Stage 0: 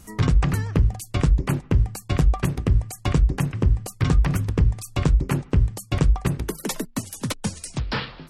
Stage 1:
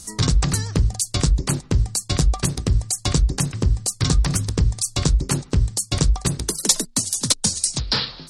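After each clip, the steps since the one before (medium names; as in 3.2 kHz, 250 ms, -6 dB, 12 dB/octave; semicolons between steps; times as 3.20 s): high-order bell 6.1 kHz +15.5 dB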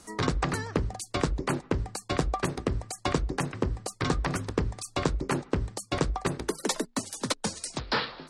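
three-band isolator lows -15 dB, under 260 Hz, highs -18 dB, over 2.5 kHz; trim +1.5 dB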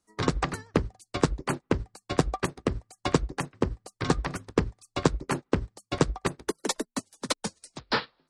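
upward expansion 2.5:1, over -43 dBFS; trim +5.5 dB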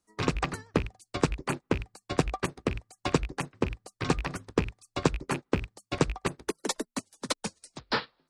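rattle on loud lows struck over -30 dBFS, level -23 dBFS; trim -2 dB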